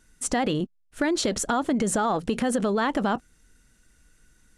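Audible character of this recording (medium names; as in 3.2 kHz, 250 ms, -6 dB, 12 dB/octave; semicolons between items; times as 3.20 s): noise floor -64 dBFS; spectral tilt -4.0 dB/octave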